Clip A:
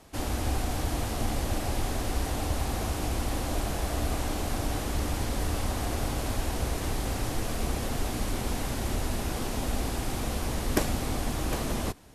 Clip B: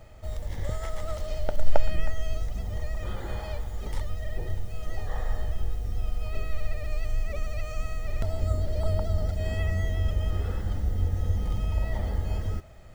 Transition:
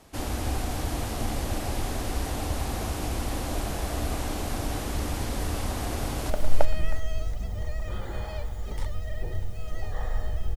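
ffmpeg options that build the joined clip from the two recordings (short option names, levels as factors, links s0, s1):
-filter_complex "[0:a]apad=whole_dur=10.56,atrim=end=10.56,atrim=end=6.302[s0];[1:a]atrim=start=1.448:end=5.71[s1];[s0][s1]acrossfade=d=0.004:c1=hsin:c2=hsin,asplit=2[s2][s3];[s3]afade=t=in:st=5.9:d=0.01,afade=t=out:st=6.3:d=0.01,aecho=0:1:350|700|1050|1400:0.473151|0.165603|0.057961|0.0202864[s4];[s2][s4]amix=inputs=2:normalize=0"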